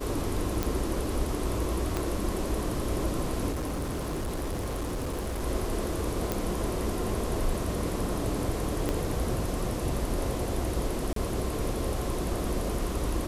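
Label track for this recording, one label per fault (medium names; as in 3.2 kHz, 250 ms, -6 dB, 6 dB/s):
0.630000	0.630000	pop
1.970000	1.970000	pop -14 dBFS
3.510000	5.420000	clipped -28.5 dBFS
6.320000	6.320000	pop
8.890000	8.890000	pop -15 dBFS
11.130000	11.160000	dropout 33 ms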